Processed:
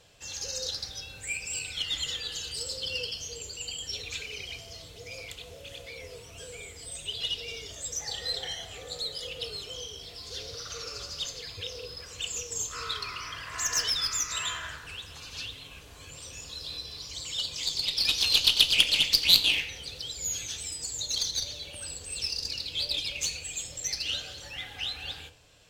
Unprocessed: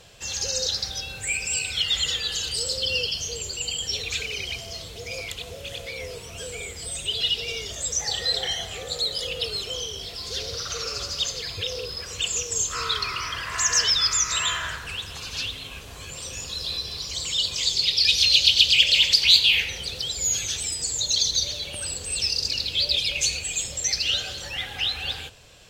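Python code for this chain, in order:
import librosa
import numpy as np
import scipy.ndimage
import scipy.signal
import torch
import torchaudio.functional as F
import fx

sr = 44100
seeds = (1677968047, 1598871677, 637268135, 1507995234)

y = fx.cheby_harmonics(x, sr, harmonics=(3, 4, 5, 7), levels_db=(-12, -29, -27, -36), full_scale_db=-3.5)
y = fx.rev_fdn(y, sr, rt60_s=0.45, lf_ratio=1.0, hf_ratio=0.65, size_ms=20.0, drr_db=8.5)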